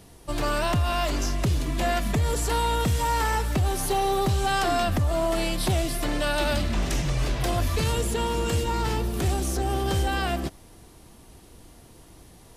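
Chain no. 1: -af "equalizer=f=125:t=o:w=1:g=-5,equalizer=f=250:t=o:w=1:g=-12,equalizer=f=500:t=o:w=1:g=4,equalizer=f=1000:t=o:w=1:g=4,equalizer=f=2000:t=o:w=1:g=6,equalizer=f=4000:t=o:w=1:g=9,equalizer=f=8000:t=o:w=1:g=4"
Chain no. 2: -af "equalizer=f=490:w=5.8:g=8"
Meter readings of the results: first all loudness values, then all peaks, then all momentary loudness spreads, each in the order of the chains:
-22.0 LUFS, -25.0 LUFS; -7.5 dBFS, -14.0 dBFS; 5 LU, 3 LU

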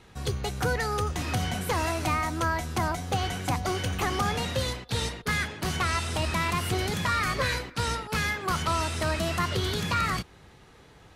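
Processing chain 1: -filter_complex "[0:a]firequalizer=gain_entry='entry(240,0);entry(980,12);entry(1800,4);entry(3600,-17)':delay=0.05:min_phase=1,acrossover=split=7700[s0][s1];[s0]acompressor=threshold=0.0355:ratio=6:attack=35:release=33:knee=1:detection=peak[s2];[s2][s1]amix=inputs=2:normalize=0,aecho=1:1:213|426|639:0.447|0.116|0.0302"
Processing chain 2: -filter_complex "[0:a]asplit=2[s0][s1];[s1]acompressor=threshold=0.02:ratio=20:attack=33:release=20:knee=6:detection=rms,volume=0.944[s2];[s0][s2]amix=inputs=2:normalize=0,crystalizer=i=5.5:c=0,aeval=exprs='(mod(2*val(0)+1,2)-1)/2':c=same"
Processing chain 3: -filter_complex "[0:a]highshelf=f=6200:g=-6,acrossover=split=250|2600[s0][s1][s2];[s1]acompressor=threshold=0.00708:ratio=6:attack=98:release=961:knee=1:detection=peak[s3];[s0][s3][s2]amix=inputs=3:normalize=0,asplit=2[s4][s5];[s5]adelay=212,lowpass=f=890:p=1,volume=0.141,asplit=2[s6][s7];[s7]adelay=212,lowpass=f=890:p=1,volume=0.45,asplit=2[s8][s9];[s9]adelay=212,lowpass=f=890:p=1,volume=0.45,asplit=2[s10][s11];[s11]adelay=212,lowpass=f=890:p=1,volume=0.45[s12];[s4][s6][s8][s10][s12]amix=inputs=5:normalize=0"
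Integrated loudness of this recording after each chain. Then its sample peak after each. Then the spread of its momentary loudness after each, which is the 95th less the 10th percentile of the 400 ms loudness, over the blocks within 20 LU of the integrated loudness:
-26.5 LUFS, -17.5 LUFS, -32.5 LUFS; -11.5 dBFS, -6.0 dBFS, -18.5 dBFS; 3 LU, 4 LU, 3 LU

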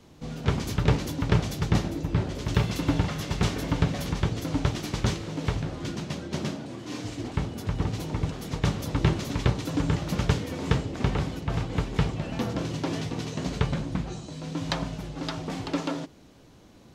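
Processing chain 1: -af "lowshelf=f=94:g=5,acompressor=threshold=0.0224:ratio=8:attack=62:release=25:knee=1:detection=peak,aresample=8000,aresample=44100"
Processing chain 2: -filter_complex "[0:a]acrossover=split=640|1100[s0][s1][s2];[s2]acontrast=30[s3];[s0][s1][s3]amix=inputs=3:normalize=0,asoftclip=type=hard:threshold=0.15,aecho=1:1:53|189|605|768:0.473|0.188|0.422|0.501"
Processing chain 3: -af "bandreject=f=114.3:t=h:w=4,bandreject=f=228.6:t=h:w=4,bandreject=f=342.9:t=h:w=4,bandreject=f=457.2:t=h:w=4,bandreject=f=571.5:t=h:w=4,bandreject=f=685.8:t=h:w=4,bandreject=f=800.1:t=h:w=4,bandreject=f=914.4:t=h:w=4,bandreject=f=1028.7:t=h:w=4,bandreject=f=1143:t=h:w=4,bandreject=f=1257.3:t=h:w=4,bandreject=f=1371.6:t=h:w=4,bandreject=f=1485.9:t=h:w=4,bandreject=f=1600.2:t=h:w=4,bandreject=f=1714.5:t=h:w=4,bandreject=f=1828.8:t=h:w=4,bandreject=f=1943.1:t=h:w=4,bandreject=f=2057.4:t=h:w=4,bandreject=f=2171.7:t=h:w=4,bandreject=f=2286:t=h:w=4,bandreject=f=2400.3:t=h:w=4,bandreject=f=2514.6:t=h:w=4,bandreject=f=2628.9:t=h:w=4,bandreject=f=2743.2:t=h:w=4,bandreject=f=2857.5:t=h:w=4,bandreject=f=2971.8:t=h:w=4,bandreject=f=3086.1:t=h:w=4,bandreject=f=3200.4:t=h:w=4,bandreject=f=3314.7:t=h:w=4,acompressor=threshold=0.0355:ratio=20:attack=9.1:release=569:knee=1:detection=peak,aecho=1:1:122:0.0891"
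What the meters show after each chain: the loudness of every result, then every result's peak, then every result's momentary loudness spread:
-31.5 LUFS, -26.5 LUFS, -36.5 LUFS; -11.0 dBFS, -11.5 dBFS, -17.5 dBFS; 4 LU, 6 LU, 2 LU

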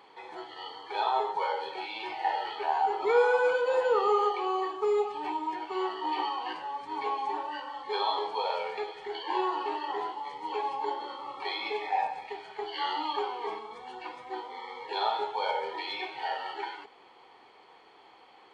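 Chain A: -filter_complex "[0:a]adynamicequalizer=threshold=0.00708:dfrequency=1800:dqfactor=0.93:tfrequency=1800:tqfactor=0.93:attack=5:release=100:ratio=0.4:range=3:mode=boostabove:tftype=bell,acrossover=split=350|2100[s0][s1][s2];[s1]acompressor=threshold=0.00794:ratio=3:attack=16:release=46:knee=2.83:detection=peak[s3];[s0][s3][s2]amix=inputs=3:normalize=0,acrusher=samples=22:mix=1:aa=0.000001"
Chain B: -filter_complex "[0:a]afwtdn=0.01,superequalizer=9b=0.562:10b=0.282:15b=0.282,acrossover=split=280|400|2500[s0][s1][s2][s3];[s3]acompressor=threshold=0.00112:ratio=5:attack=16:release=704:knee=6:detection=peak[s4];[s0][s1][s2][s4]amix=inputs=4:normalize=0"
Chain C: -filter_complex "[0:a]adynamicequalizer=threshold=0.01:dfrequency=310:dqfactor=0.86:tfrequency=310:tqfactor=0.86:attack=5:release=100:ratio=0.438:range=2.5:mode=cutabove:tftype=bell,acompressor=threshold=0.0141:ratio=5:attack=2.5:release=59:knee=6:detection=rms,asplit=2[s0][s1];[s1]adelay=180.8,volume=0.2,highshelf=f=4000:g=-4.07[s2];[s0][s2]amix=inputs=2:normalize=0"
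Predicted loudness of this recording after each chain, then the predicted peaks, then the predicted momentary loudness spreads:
-35.5 LUFS, -33.5 LUFS, -40.5 LUFS; -20.5 dBFS, -15.0 dBFS, -28.5 dBFS; 10 LU, 17 LU, 5 LU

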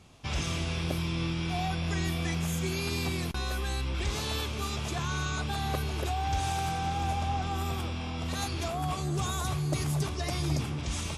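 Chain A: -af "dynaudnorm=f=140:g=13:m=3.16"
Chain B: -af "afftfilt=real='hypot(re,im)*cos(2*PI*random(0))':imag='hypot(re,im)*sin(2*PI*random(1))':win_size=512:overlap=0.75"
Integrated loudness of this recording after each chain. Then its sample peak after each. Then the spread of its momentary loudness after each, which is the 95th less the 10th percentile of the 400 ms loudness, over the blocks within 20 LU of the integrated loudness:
-22.0 LUFS, -38.0 LUFS; -8.5 dBFS, -22.0 dBFS; 5 LU, 3 LU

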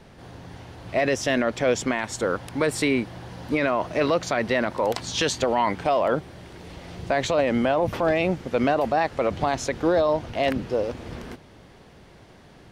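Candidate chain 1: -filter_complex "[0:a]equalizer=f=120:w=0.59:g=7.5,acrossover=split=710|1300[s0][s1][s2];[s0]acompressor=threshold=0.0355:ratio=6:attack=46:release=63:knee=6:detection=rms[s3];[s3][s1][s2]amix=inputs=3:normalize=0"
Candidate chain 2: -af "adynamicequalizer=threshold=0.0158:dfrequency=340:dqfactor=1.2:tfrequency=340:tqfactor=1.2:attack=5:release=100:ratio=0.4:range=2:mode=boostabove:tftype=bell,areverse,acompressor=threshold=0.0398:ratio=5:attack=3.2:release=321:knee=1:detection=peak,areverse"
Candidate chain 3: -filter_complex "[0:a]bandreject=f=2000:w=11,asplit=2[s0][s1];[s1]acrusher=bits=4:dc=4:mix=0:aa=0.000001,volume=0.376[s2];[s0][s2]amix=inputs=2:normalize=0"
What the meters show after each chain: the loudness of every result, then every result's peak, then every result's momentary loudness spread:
-26.0 LUFS, -34.0 LUFS, -21.5 LUFS; -12.0 dBFS, -17.5 dBFS, -6.5 dBFS; 13 LU, 11 LU, 18 LU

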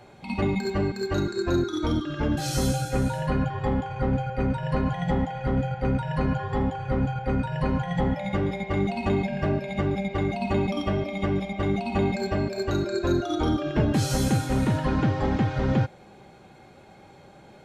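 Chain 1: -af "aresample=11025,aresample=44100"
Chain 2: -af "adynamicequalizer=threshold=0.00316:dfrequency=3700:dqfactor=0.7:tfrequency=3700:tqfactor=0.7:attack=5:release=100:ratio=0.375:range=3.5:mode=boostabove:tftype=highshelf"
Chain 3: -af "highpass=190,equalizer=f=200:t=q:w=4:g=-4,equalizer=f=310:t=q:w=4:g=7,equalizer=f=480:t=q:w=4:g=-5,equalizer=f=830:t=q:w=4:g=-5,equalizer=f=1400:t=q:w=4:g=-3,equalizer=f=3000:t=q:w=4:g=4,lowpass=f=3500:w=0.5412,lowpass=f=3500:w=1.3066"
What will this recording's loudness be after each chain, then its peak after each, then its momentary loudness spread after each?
-26.5 LUFS, -26.0 LUFS, -28.0 LUFS; -10.5 dBFS, -10.0 dBFS, -12.0 dBFS; 3 LU, 4 LU, 6 LU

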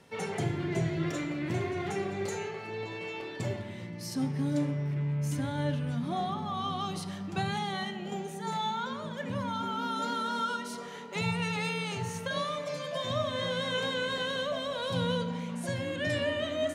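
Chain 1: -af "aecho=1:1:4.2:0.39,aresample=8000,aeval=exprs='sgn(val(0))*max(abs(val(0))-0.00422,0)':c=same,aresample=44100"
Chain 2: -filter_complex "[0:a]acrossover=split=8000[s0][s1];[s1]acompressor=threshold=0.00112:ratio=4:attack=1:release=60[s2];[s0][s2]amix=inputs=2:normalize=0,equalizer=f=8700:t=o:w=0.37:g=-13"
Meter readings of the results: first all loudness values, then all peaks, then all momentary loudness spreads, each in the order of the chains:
-34.5 LUFS, -33.0 LUFS; -19.0 dBFS, -18.5 dBFS; 8 LU, 7 LU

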